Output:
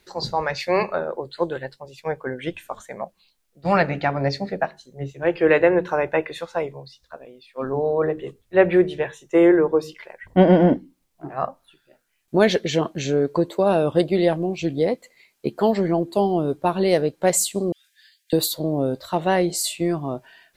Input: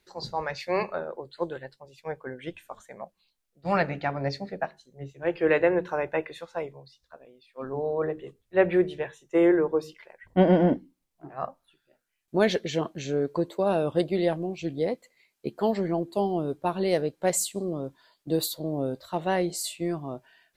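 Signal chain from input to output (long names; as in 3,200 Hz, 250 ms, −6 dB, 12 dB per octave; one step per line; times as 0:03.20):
0:17.72–0:18.33: Chebyshev high-pass filter 1,600 Hz, order 8
in parallel at −2.5 dB: downward compressor, threshold −33 dBFS, peak gain reduction 18 dB
on the sum: level +4.5 dB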